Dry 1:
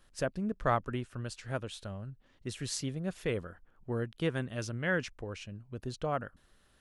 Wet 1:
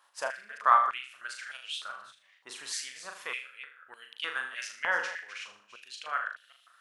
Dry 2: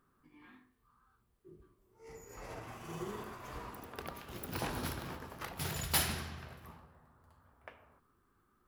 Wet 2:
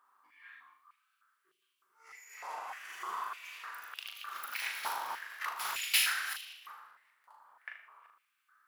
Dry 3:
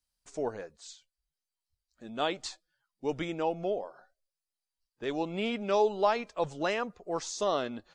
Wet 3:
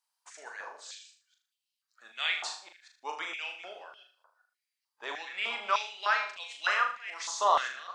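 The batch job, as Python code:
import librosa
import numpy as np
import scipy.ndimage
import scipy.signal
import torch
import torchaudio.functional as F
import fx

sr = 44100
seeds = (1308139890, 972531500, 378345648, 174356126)

y = fx.reverse_delay(x, sr, ms=192, wet_db=-12.5)
y = fx.room_flutter(y, sr, wall_m=6.7, rt60_s=0.44)
y = fx.filter_held_highpass(y, sr, hz=3.3, low_hz=930.0, high_hz=2900.0)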